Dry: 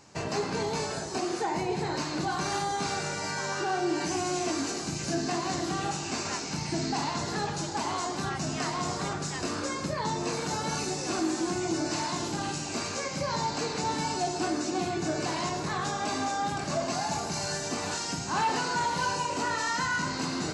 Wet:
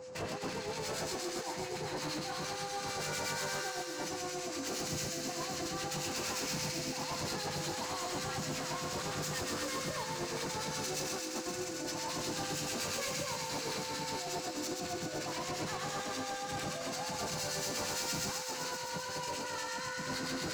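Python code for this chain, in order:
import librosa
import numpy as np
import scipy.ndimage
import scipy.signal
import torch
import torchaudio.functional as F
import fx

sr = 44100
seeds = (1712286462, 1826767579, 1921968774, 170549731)

p1 = fx.over_compress(x, sr, threshold_db=-33.0, ratio=-0.5)
p2 = np.clip(p1, -10.0 ** (-33.0 / 20.0), 10.0 ** (-33.0 / 20.0))
p3 = fx.harmonic_tremolo(p2, sr, hz=8.7, depth_pct=70, crossover_hz=1400.0)
p4 = p3 + 10.0 ** (-45.0 / 20.0) * np.sin(2.0 * np.pi * 510.0 * np.arange(len(p3)) / sr)
y = p4 + fx.echo_wet_highpass(p4, sr, ms=129, feedback_pct=82, hz=1600.0, wet_db=-3.5, dry=0)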